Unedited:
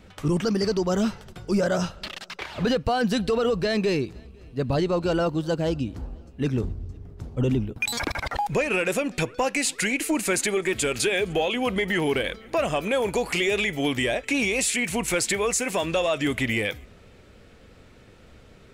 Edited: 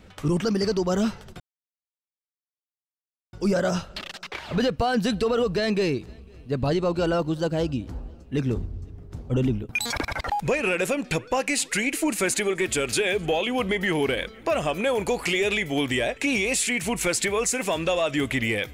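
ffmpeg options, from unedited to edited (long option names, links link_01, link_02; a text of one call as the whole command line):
ffmpeg -i in.wav -filter_complex "[0:a]asplit=2[link_01][link_02];[link_01]atrim=end=1.4,asetpts=PTS-STARTPTS,afade=type=out:start_time=1.396:duration=0.004:curve=hsin,apad=pad_dur=1.93[link_03];[link_02]atrim=start=1.4,asetpts=PTS-STARTPTS,afade=type=in:duration=0.004:curve=hsin[link_04];[link_03][link_04]concat=n=2:v=0:a=1" out.wav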